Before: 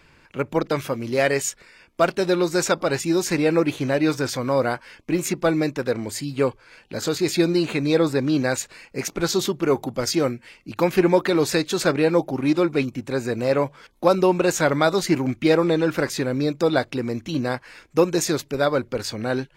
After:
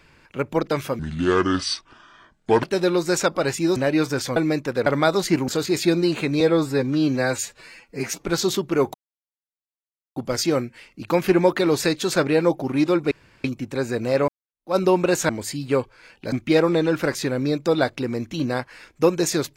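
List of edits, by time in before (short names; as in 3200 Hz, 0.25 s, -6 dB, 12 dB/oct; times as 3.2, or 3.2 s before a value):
0.99–2.09 speed 67%
3.22–3.84 cut
4.44–5.47 cut
5.97–7 swap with 14.65–15.27
7.92–9.14 stretch 1.5×
9.85 insert silence 1.22 s
12.8 insert room tone 0.33 s
13.64–14.12 fade in exponential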